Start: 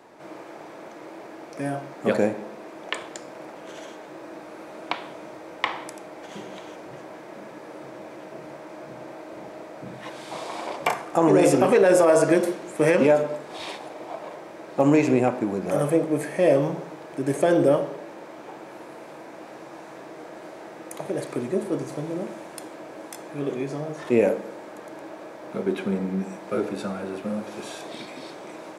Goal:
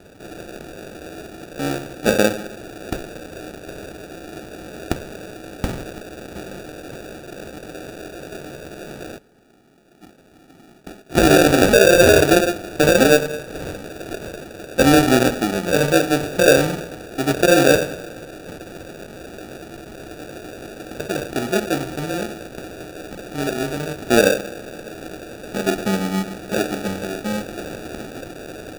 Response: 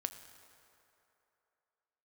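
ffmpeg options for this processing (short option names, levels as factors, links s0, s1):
-filter_complex "[0:a]asplit=3[s0][s1][s2];[s0]afade=t=out:st=9.17:d=0.02[s3];[s1]asuperpass=centerf=1800:order=4:qfactor=7.7,afade=t=in:st=9.17:d=0.02,afade=t=out:st=11.09:d=0.02[s4];[s2]afade=t=in:st=11.09:d=0.02[s5];[s3][s4][s5]amix=inputs=3:normalize=0,acrusher=samples=42:mix=1:aa=0.000001,asplit=2[s6][s7];[1:a]atrim=start_sample=2205[s8];[s7][s8]afir=irnorm=-1:irlink=0,volume=0.299[s9];[s6][s9]amix=inputs=2:normalize=0,volume=1.41"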